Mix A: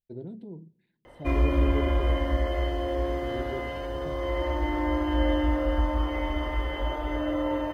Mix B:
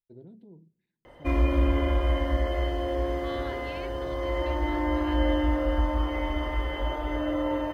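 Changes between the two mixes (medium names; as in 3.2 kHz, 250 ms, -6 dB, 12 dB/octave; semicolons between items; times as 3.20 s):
first voice -9.0 dB; second voice +11.5 dB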